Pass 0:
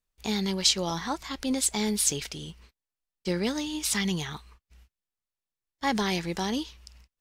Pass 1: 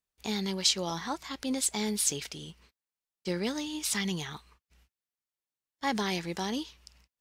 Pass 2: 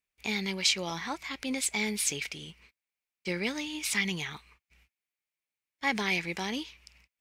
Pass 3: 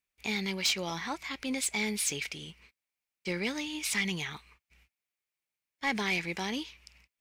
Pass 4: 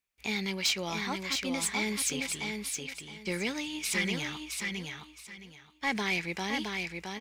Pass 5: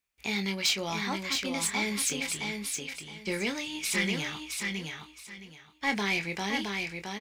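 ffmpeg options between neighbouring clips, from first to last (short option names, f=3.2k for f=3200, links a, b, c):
-af "highpass=f=110:p=1,volume=-3dB"
-af "equalizer=f=2.3k:t=o:w=0.54:g=13.5,volume=-2dB"
-af "asoftclip=type=tanh:threshold=-21dB"
-af "aecho=1:1:667|1334|2001:0.596|0.143|0.0343"
-filter_complex "[0:a]asplit=2[a][b];[b]adelay=25,volume=-8.5dB[c];[a][c]amix=inputs=2:normalize=0,volume=1dB"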